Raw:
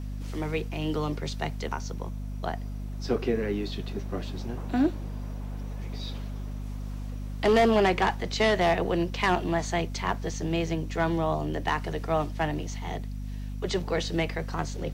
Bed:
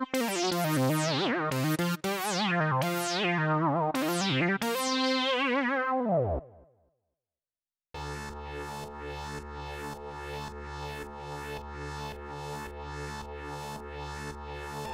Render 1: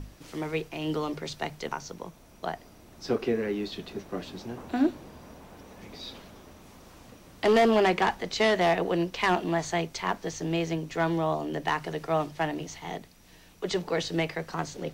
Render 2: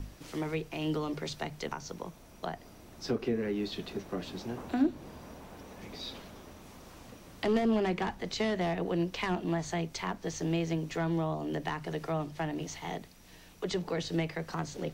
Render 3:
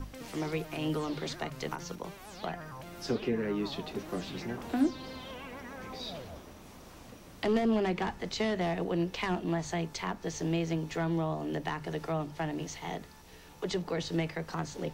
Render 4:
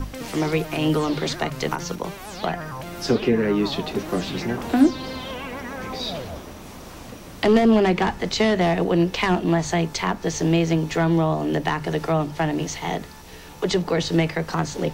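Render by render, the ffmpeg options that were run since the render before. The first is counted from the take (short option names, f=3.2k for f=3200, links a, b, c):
-af "bandreject=f=50:t=h:w=6,bandreject=f=100:t=h:w=6,bandreject=f=150:t=h:w=6,bandreject=f=200:t=h:w=6,bandreject=f=250:t=h:w=6"
-filter_complex "[0:a]acrossover=split=290[a][b];[b]acompressor=threshold=-35dB:ratio=3[c];[a][c]amix=inputs=2:normalize=0"
-filter_complex "[1:a]volume=-18dB[a];[0:a][a]amix=inputs=2:normalize=0"
-af "volume=11.5dB"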